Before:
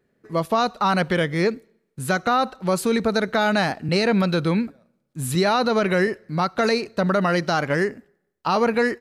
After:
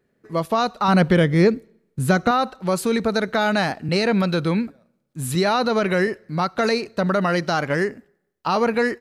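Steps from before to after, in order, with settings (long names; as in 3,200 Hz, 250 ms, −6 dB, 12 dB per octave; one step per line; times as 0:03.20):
0:00.88–0:02.31: low-shelf EQ 430 Hz +9 dB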